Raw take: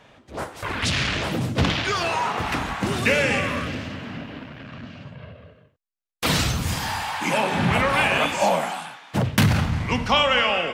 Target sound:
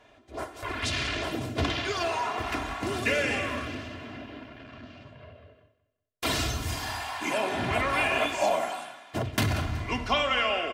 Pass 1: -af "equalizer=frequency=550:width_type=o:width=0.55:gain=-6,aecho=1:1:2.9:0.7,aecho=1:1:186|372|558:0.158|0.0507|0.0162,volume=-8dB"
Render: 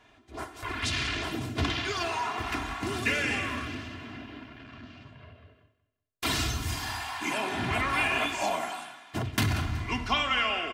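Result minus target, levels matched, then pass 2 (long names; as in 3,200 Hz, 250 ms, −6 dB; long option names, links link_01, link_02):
500 Hz band −5.0 dB
-af "equalizer=frequency=550:width_type=o:width=0.55:gain=4.5,aecho=1:1:2.9:0.7,aecho=1:1:186|372|558:0.158|0.0507|0.0162,volume=-8dB"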